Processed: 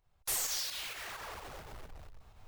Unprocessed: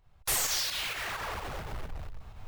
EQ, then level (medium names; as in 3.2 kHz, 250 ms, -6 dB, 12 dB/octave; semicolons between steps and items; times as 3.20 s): tone controls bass -11 dB, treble +5 dB; bass shelf 280 Hz +9 dB; -9.0 dB